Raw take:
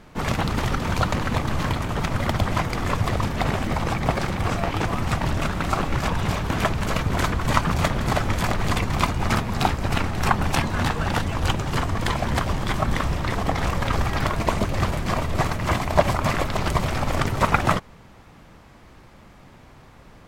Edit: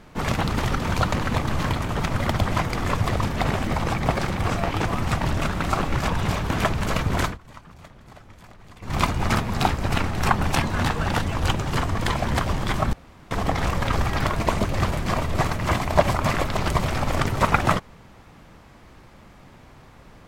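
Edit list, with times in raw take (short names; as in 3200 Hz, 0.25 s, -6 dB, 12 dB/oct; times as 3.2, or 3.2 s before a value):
7.22–8.97 dip -24 dB, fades 0.16 s
12.93–13.31 room tone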